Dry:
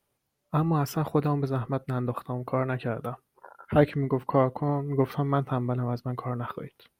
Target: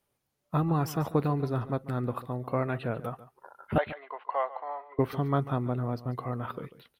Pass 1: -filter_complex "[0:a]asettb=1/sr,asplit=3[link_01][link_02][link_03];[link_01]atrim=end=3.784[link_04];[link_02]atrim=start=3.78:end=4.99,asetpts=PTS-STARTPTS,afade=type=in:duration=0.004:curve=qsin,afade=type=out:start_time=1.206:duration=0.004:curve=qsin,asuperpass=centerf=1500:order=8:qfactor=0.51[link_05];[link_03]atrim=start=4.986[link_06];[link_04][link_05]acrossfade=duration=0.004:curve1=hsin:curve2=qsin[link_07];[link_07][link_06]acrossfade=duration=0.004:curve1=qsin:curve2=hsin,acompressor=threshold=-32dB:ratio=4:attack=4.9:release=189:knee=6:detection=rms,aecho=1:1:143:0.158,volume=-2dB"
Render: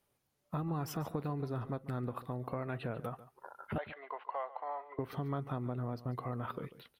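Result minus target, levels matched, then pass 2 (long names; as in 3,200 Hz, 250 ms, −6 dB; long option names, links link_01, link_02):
downward compressor: peak gain reduction +14 dB
-filter_complex "[0:a]asettb=1/sr,asplit=3[link_01][link_02][link_03];[link_01]atrim=end=3.784[link_04];[link_02]atrim=start=3.78:end=4.99,asetpts=PTS-STARTPTS,afade=type=in:duration=0.004:curve=qsin,afade=type=out:start_time=1.206:duration=0.004:curve=qsin,asuperpass=centerf=1500:order=8:qfactor=0.51[link_05];[link_03]atrim=start=4.986[link_06];[link_04][link_05]acrossfade=duration=0.004:curve1=hsin:curve2=qsin[link_07];[link_07][link_06]acrossfade=duration=0.004:curve1=qsin:curve2=hsin,aecho=1:1:143:0.158,volume=-2dB"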